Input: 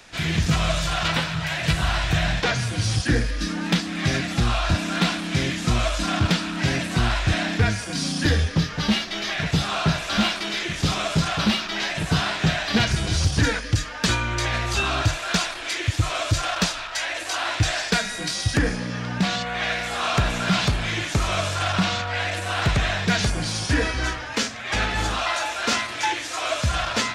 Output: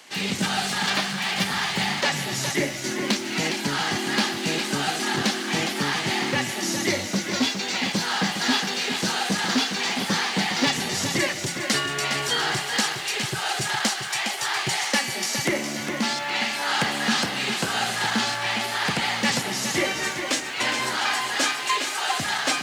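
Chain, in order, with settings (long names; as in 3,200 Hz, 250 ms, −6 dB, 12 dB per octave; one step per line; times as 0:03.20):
Bessel high-pass filter 200 Hz, order 4
speed change +20%
feedback echo at a low word length 411 ms, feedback 35%, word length 8 bits, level −7.5 dB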